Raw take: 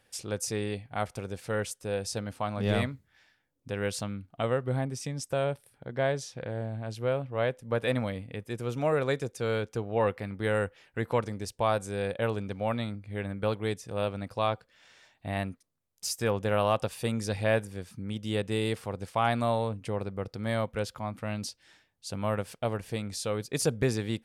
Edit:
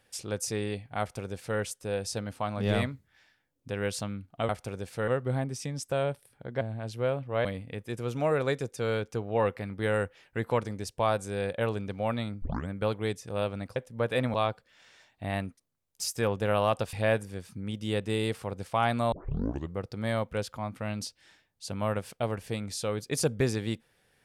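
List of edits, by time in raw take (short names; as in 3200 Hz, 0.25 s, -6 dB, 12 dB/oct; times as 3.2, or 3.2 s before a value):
1–1.59 copy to 4.49
6.02–6.64 cut
7.48–8.06 move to 14.37
13.03 tape start 0.26 s
16.96–17.35 cut
19.54 tape start 0.65 s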